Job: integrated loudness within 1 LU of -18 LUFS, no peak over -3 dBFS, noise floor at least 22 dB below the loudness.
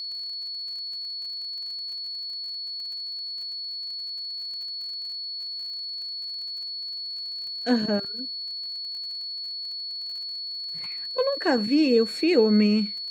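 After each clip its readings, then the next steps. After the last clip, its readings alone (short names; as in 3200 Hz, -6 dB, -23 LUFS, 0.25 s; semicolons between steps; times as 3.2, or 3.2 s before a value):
ticks 48/s; steady tone 4400 Hz; tone level -31 dBFS; loudness -27.5 LUFS; peak -8.5 dBFS; loudness target -18.0 LUFS
-> de-click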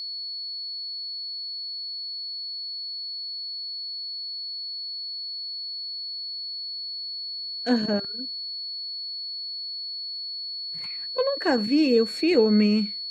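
ticks 0.15/s; steady tone 4400 Hz; tone level -31 dBFS
-> notch 4400 Hz, Q 30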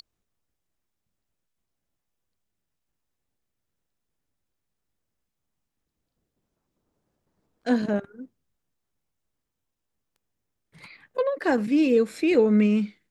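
steady tone none; loudness -23.0 LUFS; peak -9.0 dBFS; loudness target -18.0 LUFS
-> gain +5 dB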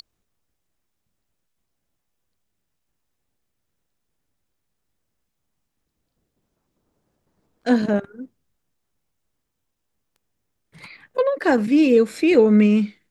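loudness -18.0 LUFS; peak -4.0 dBFS; noise floor -77 dBFS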